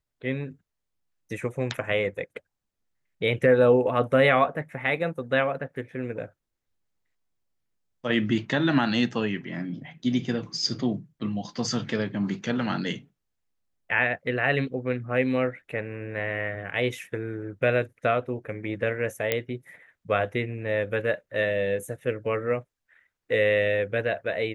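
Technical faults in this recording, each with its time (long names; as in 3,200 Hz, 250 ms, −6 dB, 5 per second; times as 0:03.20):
0:19.32: click −9 dBFS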